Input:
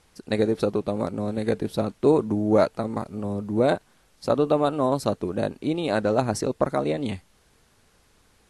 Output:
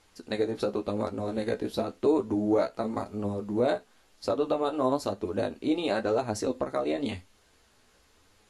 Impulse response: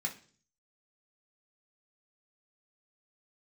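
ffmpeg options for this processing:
-filter_complex "[0:a]equalizer=f=150:t=o:w=0.66:g=-10,alimiter=limit=0.2:level=0:latency=1:release=253,flanger=delay=9.4:depth=7.1:regen=29:speed=0.95:shape=sinusoidal,asplit=2[s0][s1];[1:a]atrim=start_sample=2205,atrim=end_sample=4410,highshelf=f=4500:g=10[s2];[s1][s2]afir=irnorm=-1:irlink=0,volume=0.168[s3];[s0][s3]amix=inputs=2:normalize=0,volume=1.5"

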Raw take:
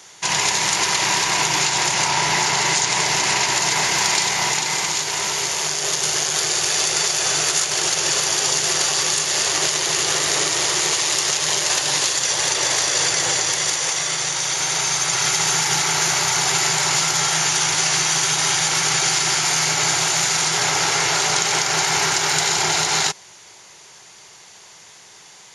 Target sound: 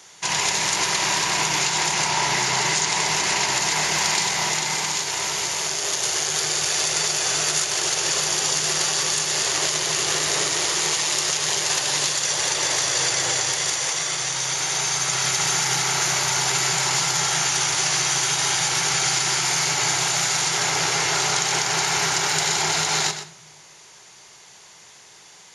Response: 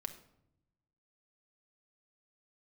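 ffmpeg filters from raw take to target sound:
-filter_complex "[0:a]asplit=2[s0][s1];[s1]equalizer=f=140:w=3.7:g=8.5[s2];[1:a]atrim=start_sample=2205,adelay=123[s3];[s2][s3]afir=irnorm=-1:irlink=0,volume=0.398[s4];[s0][s4]amix=inputs=2:normalize=0,volume=0.708"

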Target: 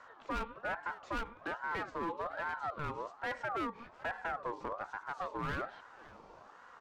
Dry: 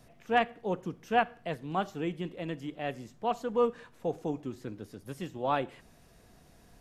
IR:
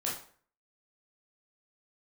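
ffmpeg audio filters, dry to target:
-af "lowpass=f=5900:w=0.5412,lowpass=f=5900:w=1.3066,equalizer=f=290:w=0.36:g=11,acompressor=threshold=0.0447:ratio=2.5,volume=28.2,asoftclip=hard,volume=0.0355,aecho=1:1:554:0.0944,aeval=exprs='val(0)*sin(2*PI*950*n/s+950*0.3/1.2*sin(2*PI*1.2*n/s))':c=same,volume=0.794"

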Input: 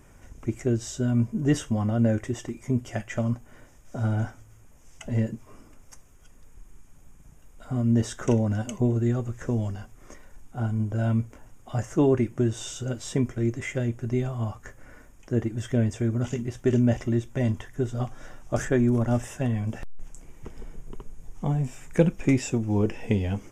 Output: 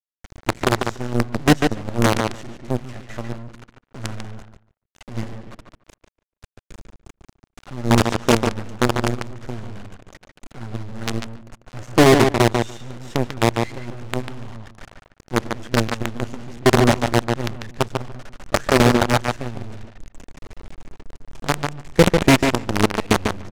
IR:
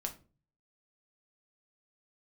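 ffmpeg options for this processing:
-filter_complex "[0:a]acrusher=bits=4:dc=4:mix=0:aa=0.000001,asplit=2[s0][s1];[s1]adelay=145,lowpass=f=3700:p=1,volume=0.501,asplit=2[s2][s3];[s3]adelay=145,lowpass=f=3700:p=1,volume=0.15,asplit=2[s4][s5];[s5]adelay=145,lowpass=f=3700:p=1,volume=0.15[s6];[s0][s2][s4][s6]amix=inputs=4:normalize=0,aeval=exprs='0.299*(cos(1*acos(clip(val(0)/0.299,-1,1)))-cos(1*PI/2))+0.0376*(cos(8*acos(clip(val(0)/0.299,-1,1)))-cos(8*PI/2))':c=same,adynamicsmooth=sensitivity=7.5:basefreq=6100,volume=2.11"

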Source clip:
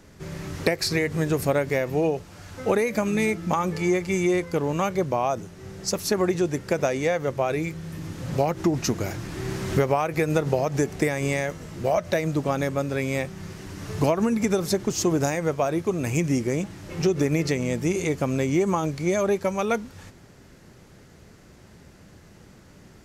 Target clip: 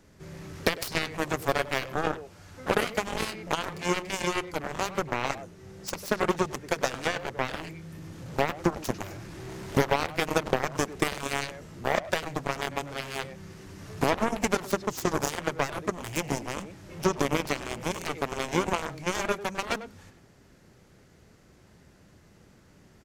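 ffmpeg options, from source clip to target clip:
-filter_complex "[0:a]asplit=2[s0][s1];[s1]adelay=100,highpass=300,lowpass=3400,asoftclip=type=hard:threshold=0.133,volume=0.447[s2];[s0][s2]amix=inputs=2:normalize=0,aeval=exprs='0.422*(cos(1*acos(clip(val(0)/0.422,-1,1)))-cos(1*PI/2))+0.0944*(cos(7*acos(clip(val(0)/0.422,-1,1)))-cos(7*PI/2))':c=same,volume=0.794"

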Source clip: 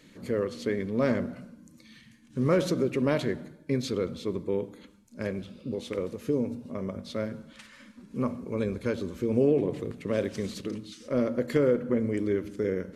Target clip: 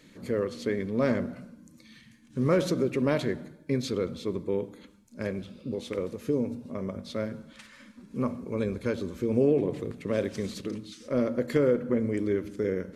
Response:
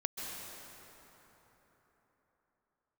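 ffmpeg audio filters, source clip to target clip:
-af "bandreject=f=2900:w=29"

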